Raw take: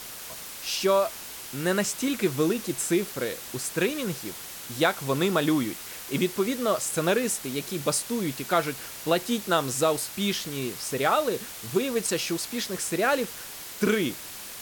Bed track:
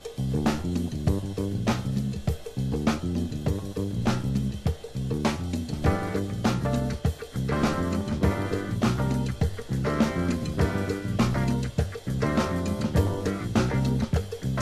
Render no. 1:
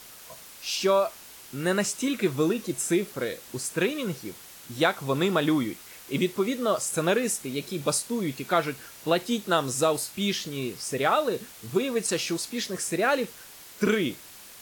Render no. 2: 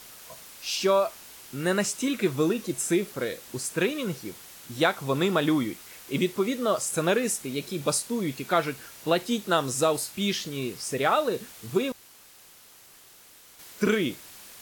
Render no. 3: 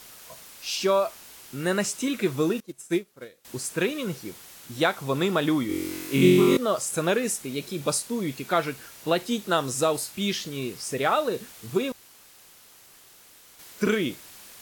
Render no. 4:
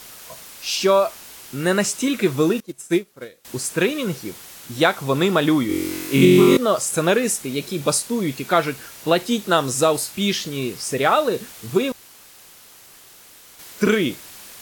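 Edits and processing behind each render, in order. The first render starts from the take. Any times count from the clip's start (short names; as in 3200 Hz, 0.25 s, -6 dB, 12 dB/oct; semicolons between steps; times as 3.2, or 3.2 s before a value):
noise print and reduce 7 dB
11.92–13.59 room tone
2.6–3.45 upward expander 2.5:1, over -34 dBFS; 5.67–6.57 flutter echo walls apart 3.8 m, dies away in 1.5 s
gain +6 dB; limiter -2 dBFS, peak gain reduction 3 dB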